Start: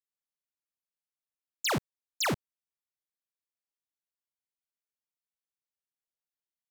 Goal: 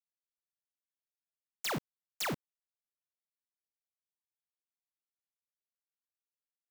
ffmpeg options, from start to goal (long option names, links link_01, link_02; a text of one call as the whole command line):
ffmpeg -i in.wav -af "aeval=exprs='0.0447*sin(PI/2*2.51*val(0)/0.0447)':channel_layout=same,acrusher=bits=5:mix=0:aa=0.000001,volume=-3.5dB" out.wav